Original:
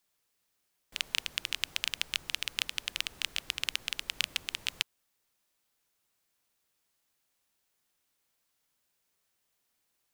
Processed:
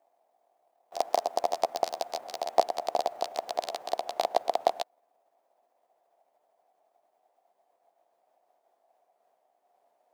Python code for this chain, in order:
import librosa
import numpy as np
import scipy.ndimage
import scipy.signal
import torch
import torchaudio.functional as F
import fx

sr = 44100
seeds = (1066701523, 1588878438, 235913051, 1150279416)

p1 = fx.pitch_glide(x, sr, semitones=10.5, runs='ending unshifted')
p2 = fx.sample_hold(p1, sr, seeds[0], rate_hz=1500.0, jitter_pct=0)
p3 = p1 + (p2 * librosa.db_to_amplitude(-3.5))
p4 = fx.highpass_res(p3, sr, hz=700.0, q=6.9)
y = fx.tilt_shelf(p4, sr, db=10.0, hz=1500.0)